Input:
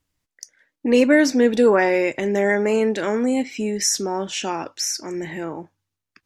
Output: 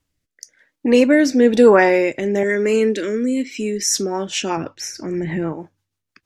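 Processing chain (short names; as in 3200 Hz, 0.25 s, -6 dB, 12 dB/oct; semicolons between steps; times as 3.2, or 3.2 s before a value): rotary speaker horn 1 Hz, later 6.3 Hz, at 3.43; 2.43–3.96 fixed phaser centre 320 Hz, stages 4; 4.57–5.53 tone controls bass +9 dB, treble -10 dB; gain +5 dB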